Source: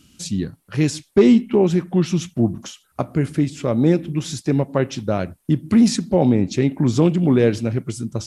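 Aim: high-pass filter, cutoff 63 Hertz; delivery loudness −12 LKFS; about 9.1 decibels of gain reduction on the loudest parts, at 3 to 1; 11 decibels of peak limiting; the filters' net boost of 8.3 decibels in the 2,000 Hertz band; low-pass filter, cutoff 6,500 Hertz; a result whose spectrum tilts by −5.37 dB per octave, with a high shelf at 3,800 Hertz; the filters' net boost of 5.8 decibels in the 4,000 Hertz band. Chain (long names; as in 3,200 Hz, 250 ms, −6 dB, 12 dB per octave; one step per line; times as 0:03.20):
high-pass filter 63 Hz
low-pass filter 6,500 Hz
parametric band 2,000 Hz +9 dB
high-shelf EQ 3,800 Hz −4.5 dB
parametric band 4,000 Hz +8.5 dB
downward compressor 3 to 1, threshold −21 dBFS
level +15.5 dB
brickwall limiter −1 dBFS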